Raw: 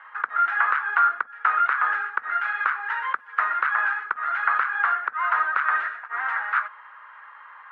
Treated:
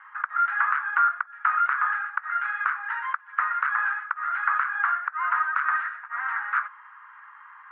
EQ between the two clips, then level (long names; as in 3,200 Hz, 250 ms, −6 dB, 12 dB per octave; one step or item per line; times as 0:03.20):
high-pass filter 960 Hz 24 dB per octave
low-pass filter 3,300 Hz 6 dB per octave
high-frequency loss of the air 360 metres
+1.5 dB